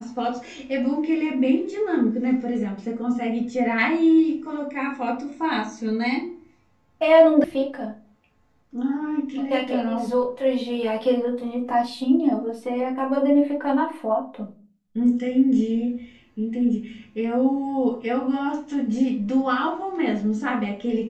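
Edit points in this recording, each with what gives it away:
7.44 sound cut off

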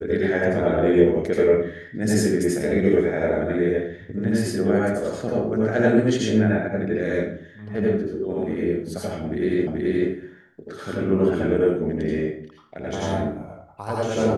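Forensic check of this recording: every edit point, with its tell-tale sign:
9.67 repeat of the last 0.43 s

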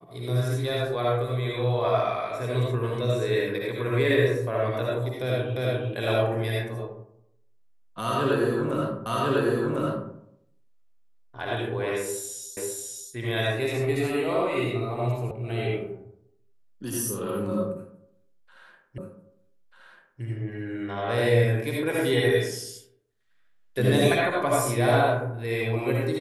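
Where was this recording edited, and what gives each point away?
5.56 repeat of the last 0.35 s
9.06 repeat of the last 1.05 s
12.57 repeat of the last 0.54 s
15.31 sound cut off
18.98 repeat of the last 1.24 s

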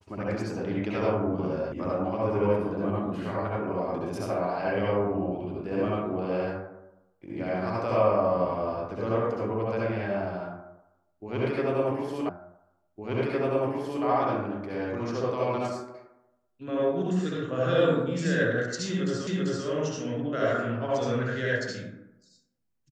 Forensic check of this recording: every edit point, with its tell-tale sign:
1.72 sound cut off
12.29 repeat of the last 1.76 s
19.27 repeat of the last 0.39 s

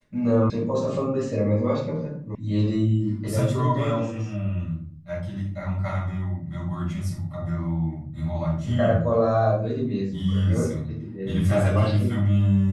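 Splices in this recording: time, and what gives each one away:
0.5 sound cut off
2.35 sound cut off

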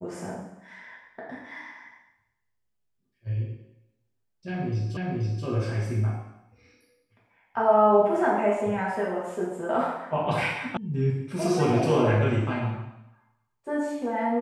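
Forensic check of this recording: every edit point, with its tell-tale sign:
4.97 repeat of the last 0.48 s
10.77 sound cut off

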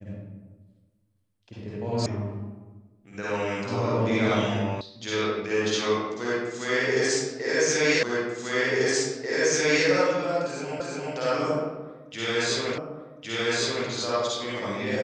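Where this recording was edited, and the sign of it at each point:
2.06 sound cut off
4.81 sound cut off
8.03 repeat of the last 1.84 s
10.8 repeat of the last 0.35 s
12.78 repeat of the last 1.11 s

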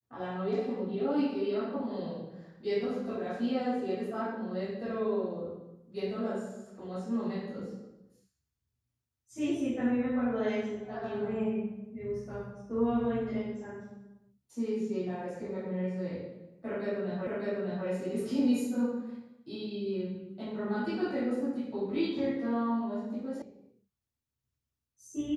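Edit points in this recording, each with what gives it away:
17.27 repeat of the last 0.6 s
23.42 sound cut off

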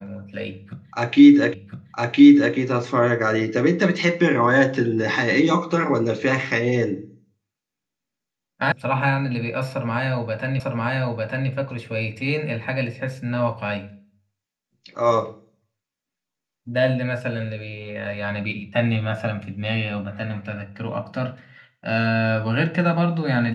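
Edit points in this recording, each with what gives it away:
1.54 repeat of the last 1.01 s
8.72 sound cut off
10.6 repeat of the last 0.9 s

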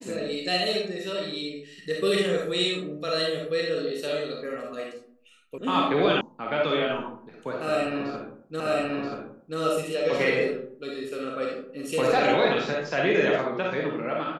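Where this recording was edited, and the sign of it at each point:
5.58 sound cut off
6.21 sound cut off
8.6 repeat of the last 0.98 s

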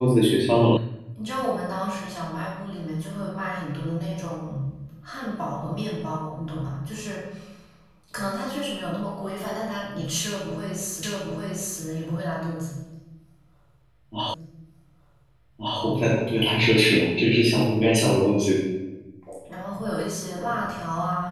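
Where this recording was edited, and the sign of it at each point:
0.77 sound cut off
11.03 repeat of the last 0.8 s
14.34 repeat of the last 1.47 s

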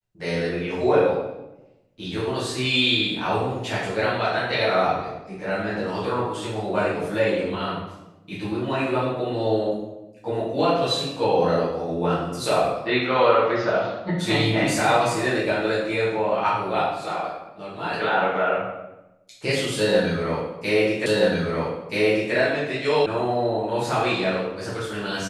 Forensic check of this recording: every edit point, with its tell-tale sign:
21.06 repeat of the last 1.28 s
23.06 sound cut off

